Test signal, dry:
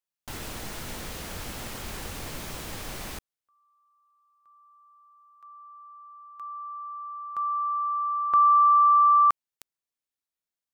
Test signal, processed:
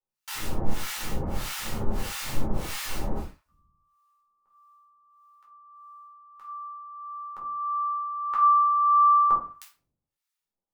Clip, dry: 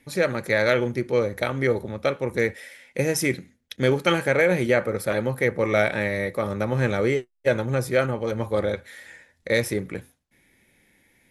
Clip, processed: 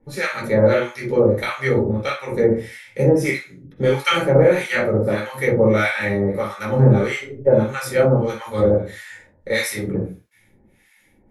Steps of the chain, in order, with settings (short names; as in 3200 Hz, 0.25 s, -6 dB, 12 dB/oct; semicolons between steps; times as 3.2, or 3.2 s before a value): shoebox room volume 350 m³, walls furnished, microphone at 4.4 m; harmonic tremolo 1.6 Hz, depth 100%, crossover 1000 Hz; gain +1 dB